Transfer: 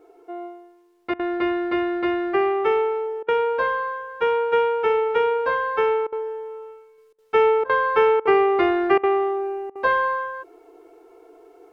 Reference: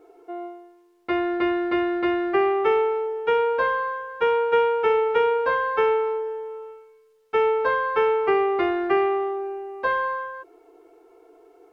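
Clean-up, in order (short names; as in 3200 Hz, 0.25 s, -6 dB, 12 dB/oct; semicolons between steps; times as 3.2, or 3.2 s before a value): interpolate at 1.14/3.23/6.07/7.13/7.64/8.2/8.98/9.7, 53 ms; gain correction -3.5 dB, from 6.98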